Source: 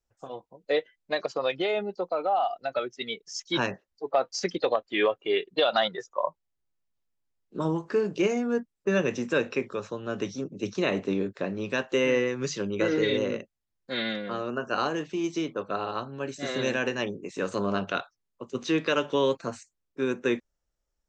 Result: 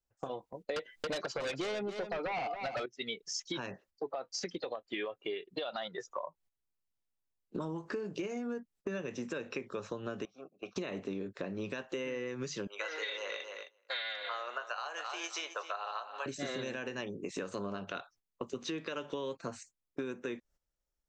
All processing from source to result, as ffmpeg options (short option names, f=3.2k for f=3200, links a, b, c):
-filter_complex "[0:a]asettb=1/sr,asplit=3[a][b][c];[a]atrim=end=0.764[d];[b]atrim=start=0.76:end=2.86,asetpts=PTS-STARTPTS,afade=t=in:d=0.004:c=qsin,afade=t=out:st=2.096:d=0.004:c=qsin,aeval=exprs='0.188*sin(PI/2*3.16*val(0)/0.188)':c=same,aecho=1:1:278:0.251,atrim=end_sample=92610[e];[c]atrim=start=2.856[f];[d][e]acrossfade=d=0.004:c1=hsin:c2=qsin[g];[g][f]acrossfade=d=0.004:c1=qsin:c2=hsin,asettb=1/sr,asplit=3[h][i][j];[h]atrim=end=10.254[k];[i]atrim=start=10.25:end=10.76,asetpts=PTS-STARTPTS,afade=t=in:d=0.004:c=qsin,afade=t=out:st=0.506:d=0.004:c=qsin,asplit=3[l][m][n];[l]bandpass=f=730:t=q:w=8,volume=0dB[o];[m]bandpass=f=1.09k:t=q:w=8,volume=-6dB[p];[n]bandpass=f=2.44k:t=q:w=8,volume=-9dB[q];[o][p][q]amix=inputs=3:normalize=0,equalizer=f=1.4k:t=o:w=0.56:g=8.5[r];[j]atrim=start=10.756[s];[k][r]acrossfade=d=0.004:c1=hsin:c2=qsin[t];[t][s]acrossfade=d=0.004:c1=qsin:c2=hsin,asettb=1/sr,asplit=3[u][v][w];[u]atrim=end=12.674[x];[v]atrim=start=12.67:end=16.26,asetpts=PTS-STARTPTS,afade=t=in:d=0.004:c=qsin,afade=t=out:st=3.586:d=0.004:c=qsin,highpass=f=690:w=0.5412,highpass=f=690:w=1.3066,aecho=1:1:264|528:0.224|0.0381,atrim=end_sample=158319[y];[w]atrim=start=16.256[z];[x][y]acrossfade=d=0.004:c1=hsin:c2=qsin[aa];[aa][z]acrossfade=d=0.004:c1=qsin:c2=hsin,agate=range=-13dB:threshold=-53dB:ratio=16:detection=peak,alimiter=limit=-22dB:level=0:latency=1:release=348,acompressor=threshold=-42dB:ratio=6,volume=6dB"